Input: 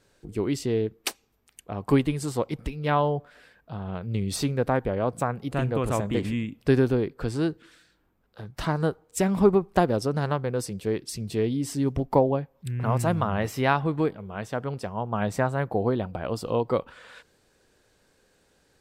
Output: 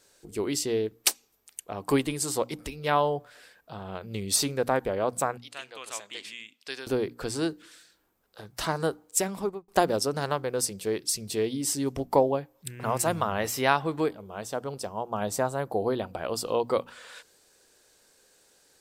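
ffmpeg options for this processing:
-filter_complex "[0:a]asettb=1/sr,asplit=3[s0][s1][s2];[s0]atrim=end=5.374[s3];[s1]atrim=start=5.37:end=6.87,asetpts=PTS-STARTPTS,afade=t=in:d=0.004:c=qsin,afade=t=out:st=1.496:d=0.004:c=qsin,bandpass=f=3700:t=q:w=1[s4];[s2]atrim=start=6.866[s5];[s3][s4]acrossfade=d=0.004:c1=hsin:c2=qsin[s6];[s6][s5]acrossfade=d=0.004:c1=qsin:c2=hsin,asettb=1/sr,asplit=3[s7][s8][s9];[s7]atrim=end=14.154[s10];[s8]atrim=start=14.15:end=15.9,asetpts=PTS-STARTPTS,afade=t=in:d=0.004:c=qsin,afade=t=out:st=1.746:d=0.004:c=qsin,equalizer=f=2000:t=o:w=1.2:g=-7.5[s11];[s9]atrim=start=15.896[s12];[s10][s11]acrossfade=d=0.004:c1=hsin:c2=qsin[s13];[s13][s12]acrossfade=d=0.004:c1=qsin:c2=hsin,asplit=2[s14][s15];[s14]atrim=end=9.68,asetpts=PTS-STARTPTS,afade=t=out:st=9.04:d=0.64[s16];[s15]atrim=start=9.68,asetpts=PTS-STARTPTS,afade=t=in:d=0.004:c=hsin[s17];[s16][s17]concat=n=2:v=0:a=1,bass=f=250:g=-9,treble=f=4000:g=10,bandreject=f=60:t=h:w=6,bandreject=f=120:t=h:w=6,bandreject=f=180:t=h:w=6,bandreject=f=240:t=h:w=6,bandreject=f=300:t=h:w=6"

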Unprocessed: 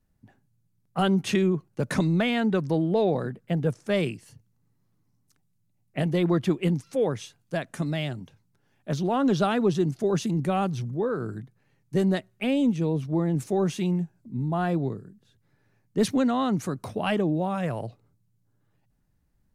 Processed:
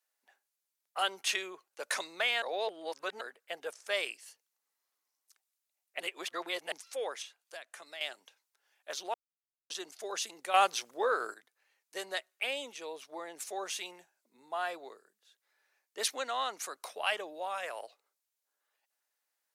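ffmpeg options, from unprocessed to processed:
-filter_complex "[0:a]asettb=1/sr,asplit=3[s0][s1][s2];[s0]atrim=end=7.224[s3];[s1]atrim=start=7.22:end=8.01,asetpts=PTS-STARTPTS,afade=t=in:d=0.004:c=qsin,afade=t=out:st=0.786:d=0.004:c=qsin,acrossover=split=220|3000[s4][s5][s6];[s4]acompressor=threshold=0.0158:ratio=4[s7];[s5]acompressor=threshold=0.0112:ratio=4[s8];[s6]acompressor=threshold=0.00178:ratio=4[s9];[s7][s8][s9]amix=inputs=3:normalize=0[s10];[s2]atrim=start=8.006[s11];[s3][s10]acrossfade=d=0.004:c1=hsin:c2=qsin[s12];[s12][s11]acrossfade=d=0.004:c1=qsin:c2=hsin,asplit=9[s13][s14][s15][s16][s17][s18][s19][s20][s21];[s13]atrim=end=2.422[s22];[s14]atrim=start=2.418:end=3.212,asetpts=PTS-STARTPTS,areverse[s23];[s15]atrim=start=3.208:end=6.002[s24];[s16]atrim=start=5.998:end=6.722,asetpts=PTS-STARTPTS,areverse[s25];[s17]atrim=start=6.718:end=9.14,asetpts=PTS-STARTPTS,afade=t=out:st=2.418:d=0.004:c=hsin[s26];[s18]atrim=start=9.14:end=9.7,asetpts=PTS-STARTPTS,volume=0[s27];[s19]atrim=start=9.7:end=10.542,asetpts=PTS-STARTPTS,afade=t=in:d=0.004:c=hsin[s28];[s20]atrim=start=10.538:end=11.342,asetpts=PTS-STARTPTS,volume=2.82[s29];[s21]atrim=start=11.338[s30];[s22][s23]acrossfade=d=0.004:c1=hsin:c2=hsin[s31];[s31][s24]acrossfade=d=0.004:c1=hsin:c2=hsin[s32];[s32][s25]acrossfade=d=0.004:c1=hsin:c2=hsin[s33];[s26][s27][s28]concat=n=3:v=0:a=1[s34];[s33][s34]acrossfade=d=0.004:c1=hsin:c2=hsin[s35];[s35][s29]acrossfade=d=0.004:c1=hsin:c2=hsin[s36];[s36][s30]acrossfade=d=0.004:c1=hsin:c2=hsin,highpass=f=500:w=0.5412,highpass=f=500:w=1.3066,tiltshelf=f=1100:g=-6.5,volume=0.631"

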